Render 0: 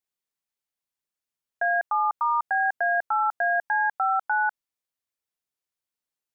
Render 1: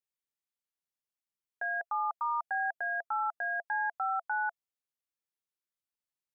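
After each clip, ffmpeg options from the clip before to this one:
ffmpeg -i in.wav -af "bandreject=frequency=680:width=12,volume=-8dB" out.wav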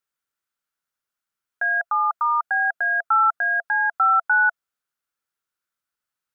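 ffmpeg -i in.wav -af "equalizer=frequency=1400:width=2.8:gain=12.5,volume=5.5dB" out.wav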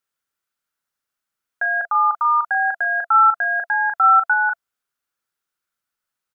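ffmpeg -i in.wav -filter_complex "[0:a]asplit=2[link_01][link_02];[link_02]adelay=39,volume=-7dB[link_03];[link_01][link_03]amix=inputs=2:normalize=0,volume=2dB" out.wav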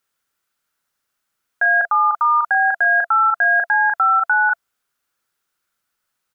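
ffmpeg -i in.wav -af "alimiter=limit=-17dB:level=0:latency=1:release=46,volume=7.5dB" out.wav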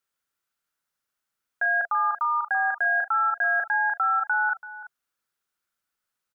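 ffmpeg -i in.wav -af "aecho=1:1:334:0.158,volume=-8dB" out.wav

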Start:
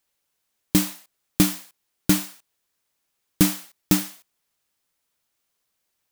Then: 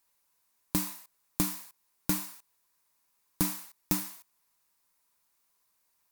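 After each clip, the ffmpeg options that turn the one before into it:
ffmpeg -i in.wav -af "equalizer=frequency=460:width_type=o:width=2.5:gain=-3,acompressor=threshold=-34dB:ratio=2,equalizer=frequency=100:width_type=o:width=0.33:gain=-11,equalizer=frequency=1000:width_type=o:width=0.33:gain=10,equalizer=frequency=3150:width_type=o:width=0.33:gain=-6,equalizer=frequency=10000:width_type=o:width=0.33:gain=3,equalizer=frequency=16000:width_type=o:width=0.33:gain=7" out.wav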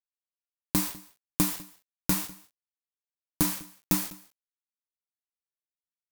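ffmpeg -i in.wav -af "flanger=delay=6.7:depth=8.3:regen=-50:speed=0.7:shape=triangular,acrusher=bits=6:mix=0:aa=0.000001,aecho=1:1:200:0.0841,volume=7.5dB" out.wav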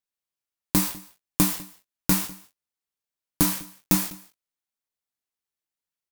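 ffmpeg -i in.wav -filter_complex "[0:a]asplit=2[link_01][link_02];[link_02]adelay=21,volume=-10.5dB[link_03];[link_01][link_03]amix=inputs=2:normalize=0,volume=4dB" out.wav

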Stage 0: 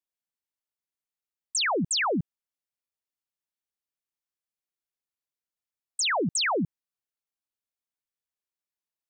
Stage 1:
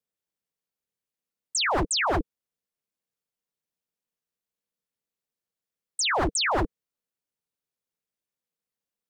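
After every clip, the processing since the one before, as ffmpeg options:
ffmpeg -i in.wav -af "equalizer=frequency=330:width_type=o:width=0.82:gain=12,aeval=exprs='val(0)*sin(2*PI*140*n/s)':channel_layout=same,aeval=exprs='0.0794*(abs(mod(val(0)/0.0794+3,4)-2)-1)':channel_layout=same,volume=3.5dB" out.wav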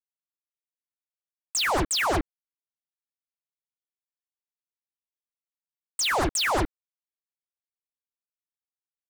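ffmpeg -i in.wav -af "acrusher=bits=4:mix=0:aa=0.5" out.wav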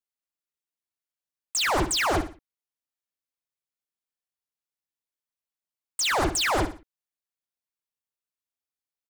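ffmpeg -i in.wav -af "aecho=1:1:60|120|180:0.299|0.0955|0.0306" out.wav

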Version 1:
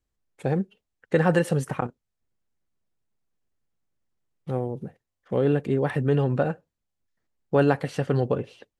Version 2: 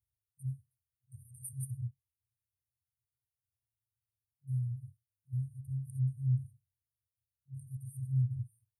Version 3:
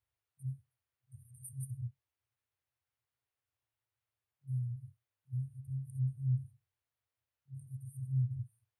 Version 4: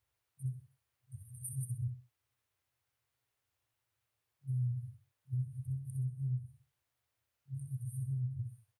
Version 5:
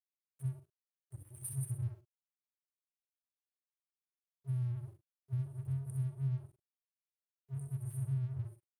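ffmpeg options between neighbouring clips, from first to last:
ffmpeg -i in.wav -af "afftfilt=real='re*(1-between(b*sr/4096,130,8600))':imag='im*(1-between(b*sr/4096,130,8600))':win_size=4096:overlap=0.75,highpass=frequency=81:width=0.5412,highpass=frequency=81:width=1.3066" out.wav
ffmpeg -i in.wav -af "bass=frequency=250:gain=-11,treble=frequency=4000:gain=-13,volume=8dB" out.wav
ffmpeg -i in.wav -af "acompressor=threshold=-39dB:ratio=5,aecho=1:1:64|128|192:0.422|0.118|0.0331,volume=5.5dB" out.wav
ffmpeg -i in.wav -filter_complex "[0:a]aeval=exprs='sgn(val(0))*max(abs(val(0))-0.00141,0)':channel_layout=same,asplit=2[link_01][link_02];[link_02]adelay=44,volume=-10.5dB[link_03];[link_01][link_03]amix=inputs=2:normalize=0,volume=1.5dB" out.wav

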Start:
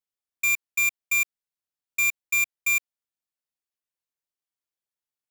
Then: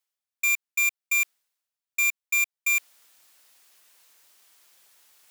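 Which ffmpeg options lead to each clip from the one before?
ffmpeg -i in.wav -af "highpass=frequency=760:poles=1,areverse,acompressor=mode=upward:threshold=-33dB:ratio=2.5,areverse" out.wav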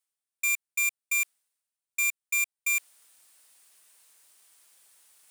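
ffmpeg -i in.wav -af "equalizer=frequency=9100:width_type=o:width=0.43:gain=10,volume=-4dB" out.wav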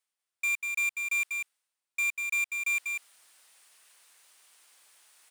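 ffmpeg -i in.wav -filter_complex "[0:a]asplit=2[link_01][link_02];[link_02]highpass=frequency=720:poles=1,volume=11dB,asoftclip=type=tanh:threshold=-19.5dB[link_03];[link_01][link_03]amix=inputs=2:normalize=0,lowpass=frequency=3900:poles=1,volume=-6dB,aecho=1:1:194:0.562,volume=-2dB" out.wav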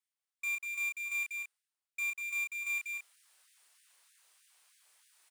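ffmpeg -i in.wav -filter_complex "[0:a]asplit=2[link_01][link_02];[link_02]adelay=31,volume=-3dB[link_03];[link_01][link_03]amix=inputs=2:normalize=0,afftfilt=real='re*gte(b*sr/1024,260*pow(1600/260,0.5+0.5*sin(2*PI*3.2*pts/sr)))':imag='im*gte(b*sr/1024,260*pow(1600/260,0.5+0.5*sin(2*PI*3.2*pts/sr)))':win_size=1024:overlap=0.75,volume=-8dB" out.wav

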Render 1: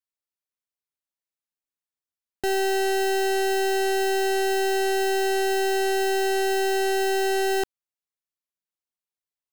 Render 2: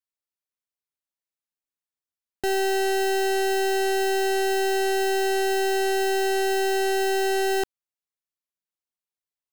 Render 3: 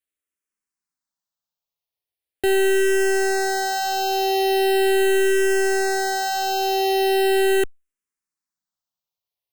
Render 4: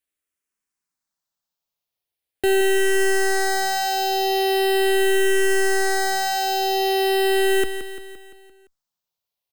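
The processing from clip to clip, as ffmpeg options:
ffmpeg -i in.wav -af anull out.wav
ffmpeg -i in.wav -filter_complex "[0:a]asplit=2[link_01][link_02];[link_02]afreqshift=-0.4[link_03];[link_01][link_03]amix=inputs=2:normalize=1,volume=6.5dB" out.wav
ffmpeg -i in.wav -filter_complex "[0:a]asplit=2[link_01][link_02];[link_02]asoftclip=type=tanh:threshold=-25dB,volume=-4dB[link_03];[link_01][link_03]amix=inputs=2:normalize=0,aecho=1:1:172|344|516|688|860|1032:0.316|0.174|0.0957|0.0526|0.0289|0.0159,volume=-1.5dB" out.wav

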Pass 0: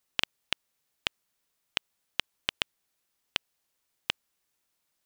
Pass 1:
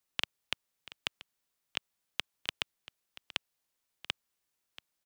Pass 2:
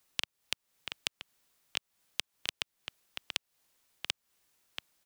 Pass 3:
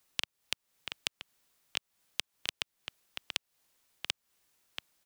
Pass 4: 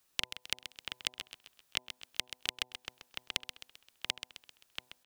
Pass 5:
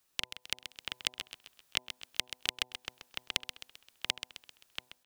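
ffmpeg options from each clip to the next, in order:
ffmpeg -i in.wav -filter_complex "[0:a]acrossover=split=150|1600[link_01][link_02][link_03];[link_01]acrusher=samples=36:mix=1:aa=0.000001[link_04];[link_04][link_02][link_03]amix=inputs=3:normalize=0,aecho=1:1:684:0.141,volume=-4.5dB" out.wav
ffmpeg -i in.wav -af "acompressor=threshold=-41dB:ratio=6,volume=10dB" out.wav
ffmpeg -i in.wav -af anull out.wav
ffmpeg -i in.wav -filter_complex "[0:a]bandreject=frequency=2100:width=16,bandreject=frequency=125.7:width_type=h:width=4,bandreject=frequency=251.4:width_type=h:width=4,bandreject=frequency=377.1:width_type=h:width=4,bandreject=frequency=502.8:width_type=h:width=4,bandreject=frequency=628.5:width_type=h:width=4,bandreject=frequency=754.2:width_type=h:width=4,bandreject=frequency=879.9:width_type=h:width=4,bandreject=frequency=1005.6:width_type=h:width=4,asplit=2[link_01][link_02];[link_02]aecho=0:1:131|262|393|524|655:0.299|0.143|0.0688|0.033|0.0158[link_03];[link_01][link_03]amix=inputs=2:normalize=0" out.wav
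ffmpeg -i in.wav -af "dynaudnorm=framelen=430:gausssize=3:maxgain=4dB,volume=-1.5dB" out.wav

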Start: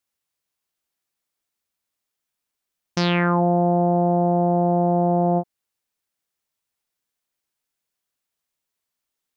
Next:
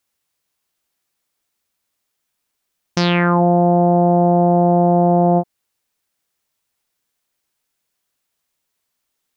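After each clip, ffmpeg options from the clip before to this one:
ffmpeg -i in.wav -af "alimiter=limit=-12.5dB:level=0:latency=1:release=128,volume=7.5dB" out.wav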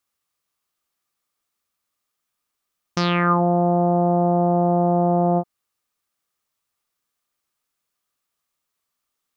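ffmpeg -i in.wav -af "equalizer=frequency=1200:width=7.5:gain=10.5,volume=-5dB" out.wav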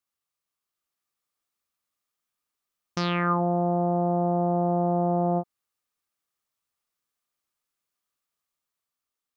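ffmpeg -i in.wav -af "dynaudnorm=framelen=270:gausssize=7:maxgain=3dB,volume=-8.5dB" out.wav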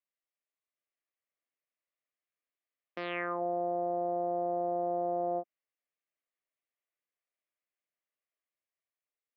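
ffmpeg -i in.wav -af "highpass=frequency=290:width=0.5412,highpass=frequency=290:width=1.3066,equalizer=frequency=380:width_type=q:width=4:gain=-3,equalizer=frequency=610:width_type=q:width=4:gain=5,equalizer=frequency=880:width_type=q:width=4:gain=-8,equalizer=frequency=1300:width_type=q:width=4:gain=-9,equalizer=frequency=2000:width_type=q:width=4:gain=4,lowpass=frequency=2800:width=0.5412,lowpass=frequency=2800:width=1.3066,volume=-5.5dB" out.wav

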